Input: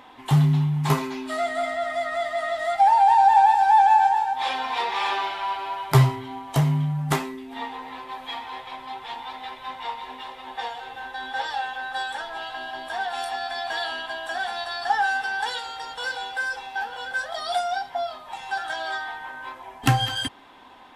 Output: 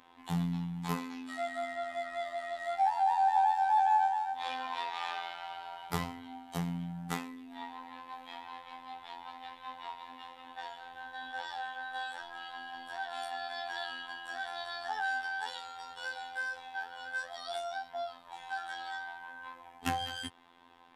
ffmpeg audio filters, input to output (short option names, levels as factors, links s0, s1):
-af "bandreject=f=630:w=12,afftfilt=real='hypot(re,im)*cos(PI*b)':imag='0':win_size=2048:overlap=0.75,volume=0.376"